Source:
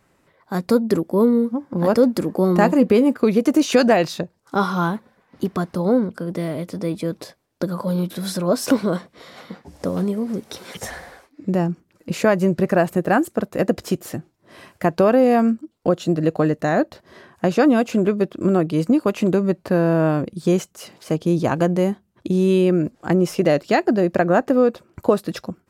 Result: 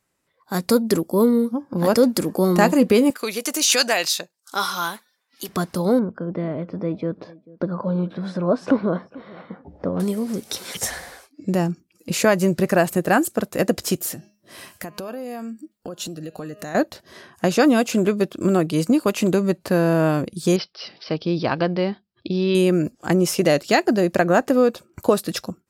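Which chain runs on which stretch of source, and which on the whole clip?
0:03.10–0:05.49: high-pass filter 1,200 Hz 6 dB per octave + high-shelf EQ 2,400 Hz +4 dB
0:05.99–0:10.00: low-pass filter 1,400 Hz + repeating echo 441 ms, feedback 16%, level −21 dB
0:13.96–0:16.75: high-shelf EQ 11,000 Hz +7.5 dB + hum removal 206.6 Hz, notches 30 + downward compressor 4 to 1, threshold −31 dBFS
0:20.56–0:22.55: Butterworth low-pass 6,400 Hz + low-shelf EQ 440 Hz −4 dB + bad sample-rate conversion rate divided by 4×, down none, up filtered
whole clip: noise reduction from a noise print of the clip's start 14 dB; parametric band 11,000 Hz +11.5 dB 2.8 octaves; level −1 dB

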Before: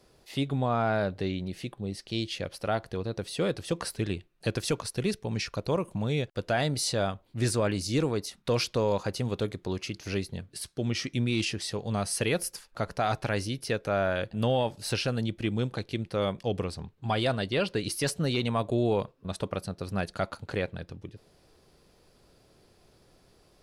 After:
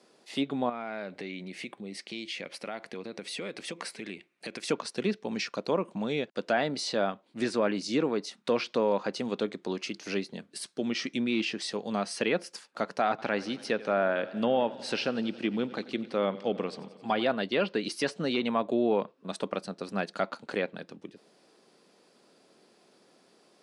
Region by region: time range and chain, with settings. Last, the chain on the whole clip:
0:00.69–0:04.69: parametric band 2,200 Hz +11 dB 0.44 octaves + downward compressor 10 to 1, threshold −33 dBFS
0:13.09–0:17.25: high-shelf EQ 8,100 Hz −9.5 dB + feedback echo with a swinging delay time 90 ms, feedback 73%, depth 69 cents, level −18.5 dB
whole clip: elliptic band-pass filter 210–9,500 Hz, stop band 50 dB; treble cut that deepens with the level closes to 2,800 Hz, closed at −24.5 dBFS; level +1.5 dB

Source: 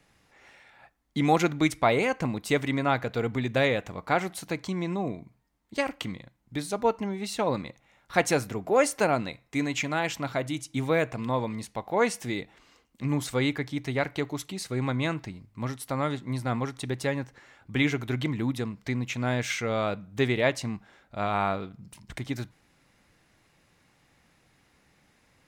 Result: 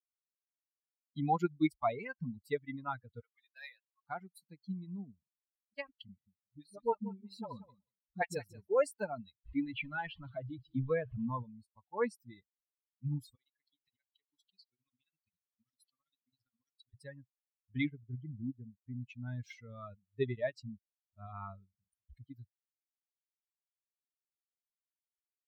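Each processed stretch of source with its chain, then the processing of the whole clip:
0:03.20–0:04.04: variable-slope delta modulation 64 kbit/s + high-pass filter 970 Hz + one half of a high-frequency compander decoder only
0:06.08–0:08.68: all-pass dispersion highs, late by 42 ms, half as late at 430 Hz + repeating echo 182 ms, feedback 24%, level −6.5 dB
0:09.45–0:11.43: converter with a step at zero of −29 dBFS + inverse Chebyshev low-pass filter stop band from 11,000 Hz, stop band 60 dB
0:13.35–0:16.94: meter weighting curve D + amplitude tremolo 15 Hz, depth 85% + downward compressor 16 to 1, threshold −37 dBFS
0:17.89–0:18.93: Butterworth band-reject 1,200 Hz, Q 3.8 + high-frequency loss of the air 470 metres
whole clip: spectral dynamics exaggerated over time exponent 3; high-shelf EQ 2,700 Hz −10.5 dB; notch filter 6,300 Hz, Q 5.1; level −2.5 dB

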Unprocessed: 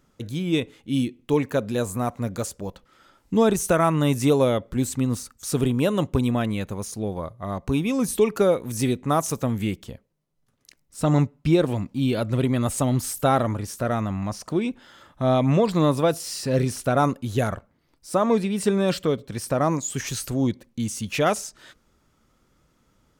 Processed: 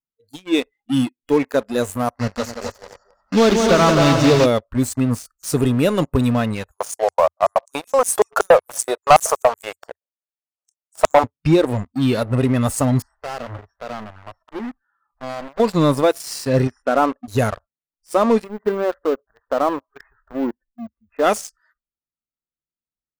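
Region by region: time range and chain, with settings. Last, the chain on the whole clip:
0:02.19–0:04.46: one scale factor per block 3 bits + low-pass filter 6,100 Hz 24 dB per octave + echo machine with several playback heads 88 ms, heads second and third, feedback 51%, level −6 dB
0:06.71–0:11.24: flat-topped bell 1,000 Hz +11.5 dB + auto-filter high-pass square 5.3 Hz 550–7,400 Hz
0:13.02–0:15.60: one scale factor per block 3 bits + head-to-tape spacing loss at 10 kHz 36 dB + gain into a clipping stage and back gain 28 dB
0:16.67–0:17.28: Savitzky-Golay smoothing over 25 samples + parametric band 100 Hz −11.5 dB 1.3 octaves
0:18.44–0:21.24: low-pass filter 1,600 Hz 24 dB per octave + parametric band 140 Hz −8.5 dB 1.7 octaves + floating-point word with a short mantissa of 4 bits
whole clip: noise reduction from a noise print of the clip's start 27 dB; leveller curve on the samples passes 3; parametric band 84 Hz −2 dB 0.29 octaves; level −6 dB

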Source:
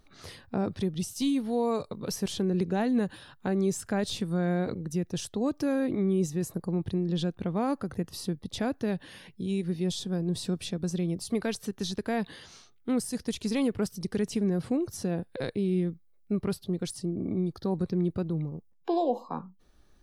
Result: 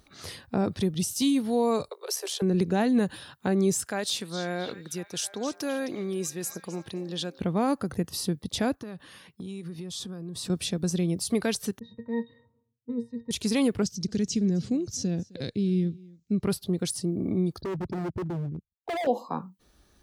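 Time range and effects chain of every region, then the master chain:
0:01.88–0:02.42: Butterworth high-pass 380 Hz 96 dB per octave + amplitude modulation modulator 72 Hz, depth 30%
0:03.84–0:07.41: high-pass filter 650 Hz 6 dB per octave + echo through a band-pass that steps 262 ms, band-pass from 4,700 Hz, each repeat −0.7 octaves, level −8.5 dB
0:08.75–0:10.50: noise gate −45 dBFS, range −7 dB + parametric band 1,200 Hz +10 dB 0.4 octaves + downward compressor 12 to 1, threshold −37 dBFS
0:11.79–0:13.31: low-pass that shuts in the quiet parts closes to 310 Hz, open at −24.5 dBFS + resonances in every octave A#, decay 0.16 s
0:13.82–0:16.43: drawn EQ curve 230 Hz 0 dB, 1,000 Hz −15 dB, 6,700 Hz +4 dB, 9,600 Hz −17 dB + single-tap delay 261 ms −23.5 dB
0:17.61–0:19.07: spectral envelope exaggerated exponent 3 + downward expander −54 dBFS + hard clipping −32 dBFS
whole clip: high-pass filter 40 Hz; high-shelf EQ 4,100 Hz +6 dB; level +3 dB

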